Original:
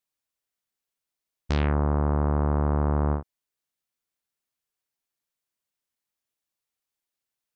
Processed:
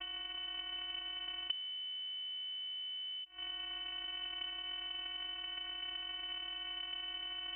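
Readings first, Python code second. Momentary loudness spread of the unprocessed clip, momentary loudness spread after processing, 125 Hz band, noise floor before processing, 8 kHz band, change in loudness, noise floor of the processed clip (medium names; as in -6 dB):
4 LU, 2 LU, under -40 dB, under -85 dBFS, no reading, -14.5 dB, -46 dBFS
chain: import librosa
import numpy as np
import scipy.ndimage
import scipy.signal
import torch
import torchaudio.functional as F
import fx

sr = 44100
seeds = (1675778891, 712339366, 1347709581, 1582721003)

y = fx.bin_compress(x, sr, power=0.4)
y = scipy.signal.sosfilt(scipy.signal.butter(2, 210.0, 'highpass', fs=sr, output='sos'), y)
y = fx.band_shelf(y, sr, hz=980.0, db=-10.5, octaves=1.7)
y = y + 0.69 * np.pad(y, (int(4.7 * sr / 1000.0), 0))[:len(y)]
y = fx.leveller(y, sr, passes=3)
y = fx.gate_flip(y, sr, shuts_db=-30.0, range_db=-40)
y = fx.vocoder(y, sr, bands=16, carrier='saw', carrier_hz=383.0)
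y = fx.air_absorb(y, sr, metres=190.0)
y = fx.freq_invert(y, sr, carrier_hz=3400)
y = fx.env_flatten(y, sr, amount_pct=50)
y = y * 10.0 ** (9.0 / 20.0)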